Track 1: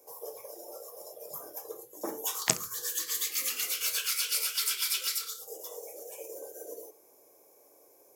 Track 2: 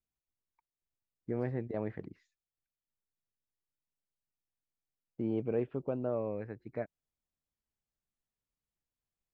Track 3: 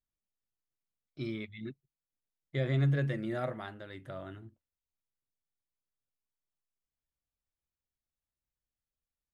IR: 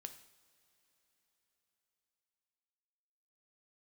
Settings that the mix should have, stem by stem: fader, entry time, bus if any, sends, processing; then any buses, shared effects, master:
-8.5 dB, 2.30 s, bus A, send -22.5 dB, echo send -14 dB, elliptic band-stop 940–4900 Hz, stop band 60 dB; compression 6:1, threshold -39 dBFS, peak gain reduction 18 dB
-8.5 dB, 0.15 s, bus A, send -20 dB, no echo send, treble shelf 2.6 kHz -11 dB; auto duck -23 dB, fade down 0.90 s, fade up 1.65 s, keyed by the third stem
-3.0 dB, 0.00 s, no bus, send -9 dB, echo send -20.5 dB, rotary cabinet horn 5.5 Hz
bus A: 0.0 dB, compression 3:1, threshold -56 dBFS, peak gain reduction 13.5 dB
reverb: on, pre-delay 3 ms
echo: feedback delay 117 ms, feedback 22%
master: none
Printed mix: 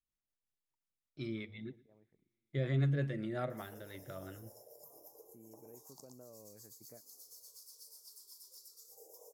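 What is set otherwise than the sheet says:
stem 1: entry 2.30 s -> 3.50 s; stem 2: send off

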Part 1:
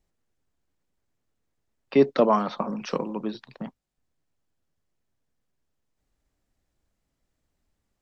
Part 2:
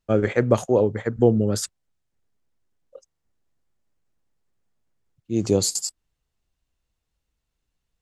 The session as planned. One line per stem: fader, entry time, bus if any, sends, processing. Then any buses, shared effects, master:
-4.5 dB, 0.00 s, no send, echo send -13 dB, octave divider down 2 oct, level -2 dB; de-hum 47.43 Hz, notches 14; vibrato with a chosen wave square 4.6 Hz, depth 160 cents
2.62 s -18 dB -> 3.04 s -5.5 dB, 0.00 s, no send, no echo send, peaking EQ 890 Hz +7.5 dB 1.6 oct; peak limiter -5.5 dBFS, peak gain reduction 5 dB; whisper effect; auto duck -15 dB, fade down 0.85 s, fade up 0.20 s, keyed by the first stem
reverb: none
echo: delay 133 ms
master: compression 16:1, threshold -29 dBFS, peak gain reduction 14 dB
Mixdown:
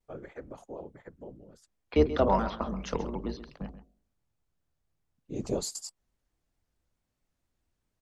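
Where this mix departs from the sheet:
stem 2 -18.0 dB -> -25.5 dB; master: missing compression 16:1, threshold -29 dBFS, peak gain reduction 14 dB

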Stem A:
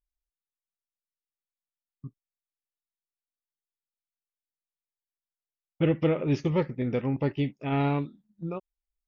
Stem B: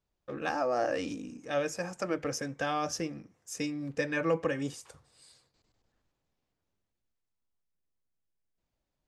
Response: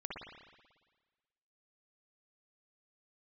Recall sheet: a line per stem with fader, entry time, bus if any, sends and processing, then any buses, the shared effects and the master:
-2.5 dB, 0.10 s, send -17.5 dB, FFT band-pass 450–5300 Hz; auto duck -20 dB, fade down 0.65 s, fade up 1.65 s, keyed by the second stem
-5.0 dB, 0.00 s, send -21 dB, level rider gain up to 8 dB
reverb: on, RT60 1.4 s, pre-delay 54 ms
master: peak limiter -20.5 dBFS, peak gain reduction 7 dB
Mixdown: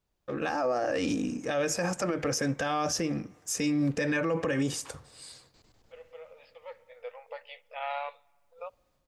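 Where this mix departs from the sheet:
stem B -5.0 dB -> +3.0 dB; reverb return -9.0 dB

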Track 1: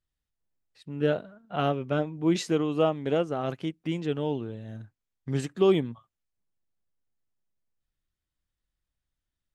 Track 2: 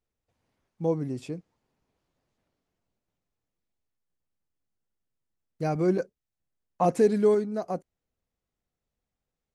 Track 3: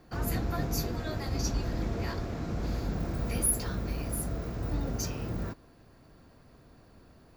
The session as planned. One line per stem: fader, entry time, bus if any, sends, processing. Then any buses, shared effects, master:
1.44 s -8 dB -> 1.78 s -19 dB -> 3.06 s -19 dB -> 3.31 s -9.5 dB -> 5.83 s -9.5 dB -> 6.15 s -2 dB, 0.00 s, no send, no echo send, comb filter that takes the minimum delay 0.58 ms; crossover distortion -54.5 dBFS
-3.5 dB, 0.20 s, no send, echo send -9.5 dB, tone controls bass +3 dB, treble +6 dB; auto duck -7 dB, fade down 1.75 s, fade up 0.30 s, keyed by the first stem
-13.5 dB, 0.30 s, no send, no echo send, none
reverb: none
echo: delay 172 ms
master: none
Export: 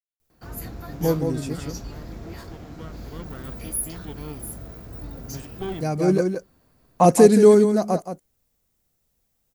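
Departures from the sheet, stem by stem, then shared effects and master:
stem 2 -3.5 dB -> +8.0 dB; stem 3 -13.5 dB -> -5.5 dB; master: extra treble shelf 11 kHz +12 dB

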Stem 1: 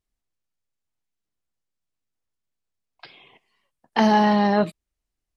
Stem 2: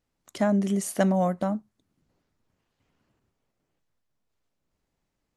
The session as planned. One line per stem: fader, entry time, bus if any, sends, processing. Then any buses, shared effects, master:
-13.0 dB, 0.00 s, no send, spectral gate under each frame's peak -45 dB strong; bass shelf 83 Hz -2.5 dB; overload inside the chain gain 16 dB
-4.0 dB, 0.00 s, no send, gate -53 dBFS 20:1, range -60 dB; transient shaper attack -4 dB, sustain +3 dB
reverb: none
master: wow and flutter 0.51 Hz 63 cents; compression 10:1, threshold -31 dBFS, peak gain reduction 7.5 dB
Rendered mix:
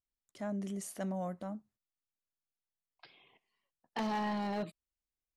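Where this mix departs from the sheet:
stem 2 -4.0 dB -> -13.5 dB; master: missing wow and flutter 0.51 Hz 63 cents

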